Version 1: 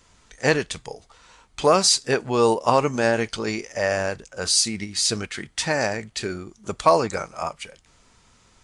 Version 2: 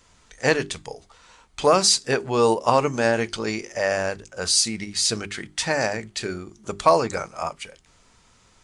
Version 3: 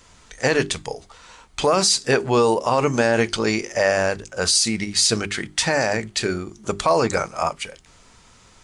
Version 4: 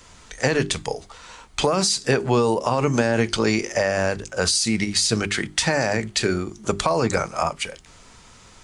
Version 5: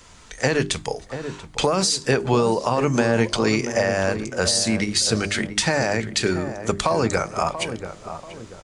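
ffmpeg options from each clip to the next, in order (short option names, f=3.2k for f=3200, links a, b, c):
-af "bandreject=f=50:t=h:w=6,bandreject=f=100:t=h:w=6,bandreject=f=150:t=h:w=6,bandreject=f=200:t=h:w=6,bandreject=f=250:t=h:w=6,bandreject=f=300:t=h:w=6,bandreject=f=350:t=h:w=6,bandreject=f=400:t=h:w=6"
-af "alimiter=level_in=13dB:limit=-1dB:release=50:level=0:latency=1,volume=-7dB"
-filter_complex "[0:a]acrossover=split=250[a][b];[b]acompressor=threshold=-21dB:ratio=6[c];[a][c]amix=inputs=2:normalize=0,volume=3dB"
-filter_complex "[0:a]asplit=2[a][b];[b]adelay=686,lowpass=f=1.1k:p=1,volume=-9dB,asplit=2[c][d];[d]adelay=686,lowpass=f=1.1k:p=1,volume=0.4,asplit=2[e][f];[f]adelay=686,lowpass=f=1.1k:p=1,volume=0.4,asplit=2[g][h];[h]adelay=686,lowpass=f=1.1k:p=1,volume=0.4[i];[a][c][e][g][i]amix=inputs=5:normalize=0"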